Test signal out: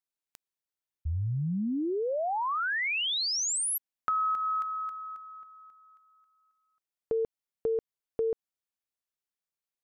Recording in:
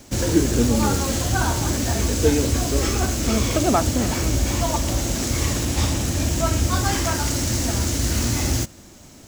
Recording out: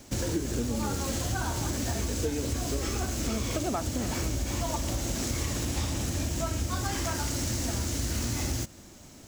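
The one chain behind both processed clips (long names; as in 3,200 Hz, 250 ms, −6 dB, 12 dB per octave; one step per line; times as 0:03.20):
downward compressor, threshold −22 dBFS
level −4.5 dB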